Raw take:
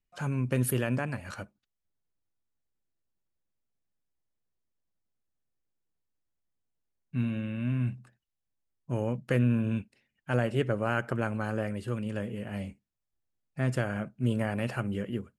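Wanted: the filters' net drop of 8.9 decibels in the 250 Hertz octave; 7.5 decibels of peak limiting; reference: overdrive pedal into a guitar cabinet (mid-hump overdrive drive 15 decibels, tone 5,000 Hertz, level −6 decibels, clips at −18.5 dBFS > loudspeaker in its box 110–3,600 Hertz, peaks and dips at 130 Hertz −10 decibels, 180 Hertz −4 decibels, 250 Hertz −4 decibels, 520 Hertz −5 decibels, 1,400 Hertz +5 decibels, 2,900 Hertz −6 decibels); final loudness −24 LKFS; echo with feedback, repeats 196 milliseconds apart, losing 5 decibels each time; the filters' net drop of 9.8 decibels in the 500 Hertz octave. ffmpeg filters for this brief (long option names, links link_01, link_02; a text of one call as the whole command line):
ffmpeg -i in.wav -filter_complex "[0:a]equalizer=frequency=250:width_type=o:gain=-3.5,equalizer=frequency=500:width_type=o:gain=-8,alimiter=limit=-23.5dB:level=0:latency=1,aecho=1:1:196|392|588|784|980|1176|1372:0.562|0.315|0.176|0.0988|0.0553|0.031|0.0173,asplit=2[link_01][link_02];[link_02]highpass=frequency=720:poles=1,volume=15dB,asoftclip=type=tanh:threshold=-18.5dB[link_03];[link_01][link_03]amix=inputs=2:normalize=0,lowpass=frequency=5000:poles=1,volume=-6dB,highpass=110,equalizer=frequency=130:width_type=q:width=4:gain=-10,equalizer=frequency=180:width_type=q:width=4:gain=-4,equalizer=frequency=250:width_type=q:width=4:gain=-4,equalizer=frequency=520:width_type=q:width=4:gain=-5,equalizer=frequency=1400:width_type=q:width=4:gain=5,equalizer=frequency=2900:width_type=q:width=4:gain=-6,lowpass=frequency=3600:width=0.5412,lowpass=frequency=3600:width=1.3066,volume=10dB" out.wav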